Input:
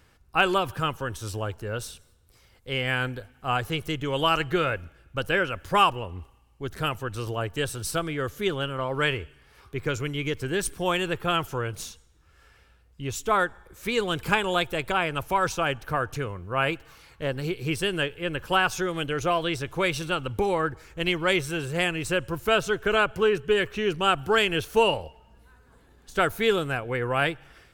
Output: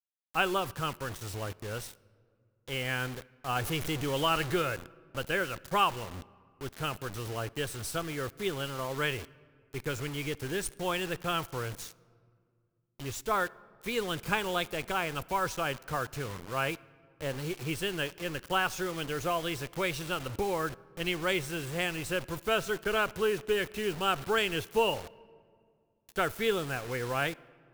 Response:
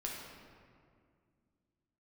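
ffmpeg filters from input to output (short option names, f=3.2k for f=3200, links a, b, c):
-filter_complex "[0:a]asettb=1/sr,asplit=3[a][b][c];[a]atrim=end=3.564[d];[b]atrim=start=3.56:end=4.62,asetpts=PTS-STARTPTS,afade=t=in:d=0.004:c=qsin,afade=t=out:st=1.056:d=0.004:c=qsin,aeval=exprs='val(0)+0.5*0.0376*sgn(val(0))':c=same[e];[c]atrim=start=4.616[f];[d][e]acrossfade=d=0.004:c1=hsin:c2=qsin[g];[g][f]acrossfade=d=0.004:c1=qsin:c2=hsin,acrusher=bits=5:mix=0:aa=0.000001,asplit=2[h][i];[1:a]atrim=start_sample=2205[j];[i][j]afir=irnorm=-1:irlink=0,volume=-20dB[k];[h][k]amix=inputs=2:normalize=0,volume=-7dB"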